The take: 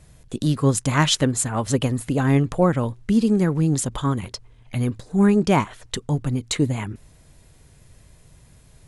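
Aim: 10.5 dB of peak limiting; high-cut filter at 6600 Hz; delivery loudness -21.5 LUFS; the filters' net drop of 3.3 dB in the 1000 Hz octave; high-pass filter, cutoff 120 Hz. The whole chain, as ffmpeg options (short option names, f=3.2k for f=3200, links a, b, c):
-af "highpass=120,lowpass=6.6k,equalizer=f=1k:t=o:g=-4,volume=5dB,alimiter=limit=-11dB:level=0:latency=1"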